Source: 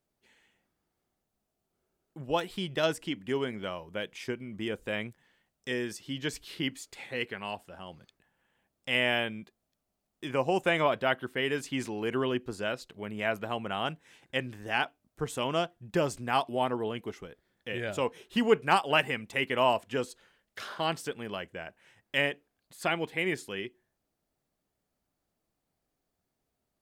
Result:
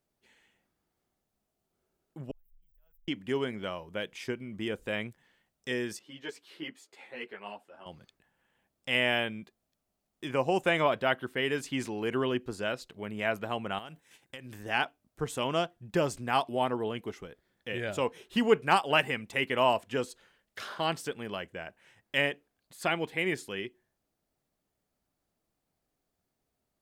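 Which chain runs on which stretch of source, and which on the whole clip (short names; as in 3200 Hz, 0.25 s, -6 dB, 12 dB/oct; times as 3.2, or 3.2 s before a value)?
2.31–3.08 inverse Chebyshev band-stop 120–9600 Hz, stop band 70 dB + fast leveller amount 70%
5.99–7.86 HPF 300 Hz + high shelf 2700 Hz -10 dB + ensemble effect
13.78–14.63 gate -58 dBFS, range -7 dB + high shelf 7300 Hz +11.5 dB + compressor 16:1, threshold -39 dBFS
whole clip: dry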